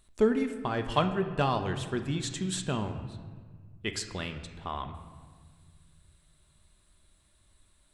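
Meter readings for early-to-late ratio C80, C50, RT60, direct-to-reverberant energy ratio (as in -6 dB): 10.5 dB, 9.0 dB, 1.6 s, 6.5 dB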